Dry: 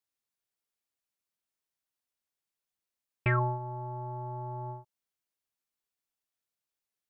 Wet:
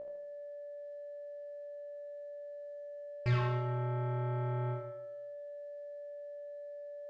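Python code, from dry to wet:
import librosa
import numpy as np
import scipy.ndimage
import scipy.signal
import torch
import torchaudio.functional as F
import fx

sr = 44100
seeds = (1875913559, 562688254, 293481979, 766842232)

p1 = fx.over_compress(x, sr, threshold_db=-35.0, ratio=-1.0)
p2 = x + (p1 * librosa.db_to_amplitude(-3.0))
p3 = p2 + 10.0 ** (-38.0 / 20.0) * np.sin(2.0 * np.pi * 580.0 * np.arange(len(p2)) / sr)
p4 = 10.0 ** (-29.0 / 20.0) * np.tanh(p3 / 10.0 ** (-29.0 / 20.0))
p5 = fx.quant_float(p4, sr, bits=6)
p6 = fx.air_absorb(p5, sr, metres=110.0)
p7 = fx.comb_fb(p6, sr, f0_hz=60.0, decay_s=0.59, harmonics='all', damping=0.0, mix_pct=90)
p8 = fx.echo_feedback(p7, sr, ms=78, feedback_pct=48, wet_db=-6.0)
y = p8 * librosa.db_to_amplitude(10.5)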